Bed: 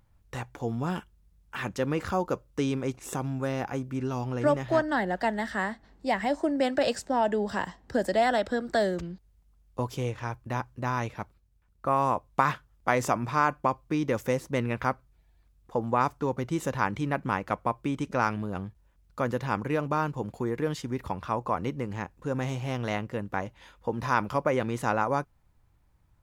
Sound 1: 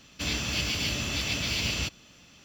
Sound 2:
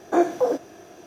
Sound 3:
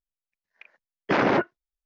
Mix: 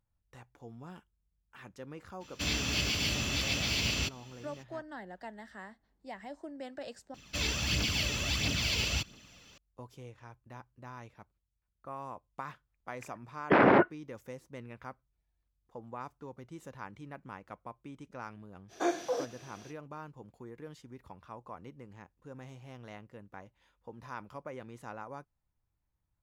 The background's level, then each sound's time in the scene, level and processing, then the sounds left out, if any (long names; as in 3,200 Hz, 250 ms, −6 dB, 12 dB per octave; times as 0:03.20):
bed −17.5 dB
0:02.20: mix in 1 −2 dB, fades 0.02 s
0:07.14: overwrite with 1 −3 dB + phase shifter 1.5 Hz, delay 2.4 ms, feedback 44%
0:12.41: mix in 3 −0.5 dB + low-pass filter 2,400 Hz
0:18.68: mix in 2 −13 dB, fades 0.05 s + parametric band 4,200 Hz +14.5 dB 2.7 octaves